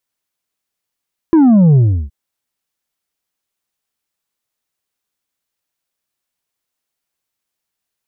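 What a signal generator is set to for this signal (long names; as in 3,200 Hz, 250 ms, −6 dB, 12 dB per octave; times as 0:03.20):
bass drop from 340 Hz, over 0.77 s, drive 4.5 dB, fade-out 0.34 s, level −6 dB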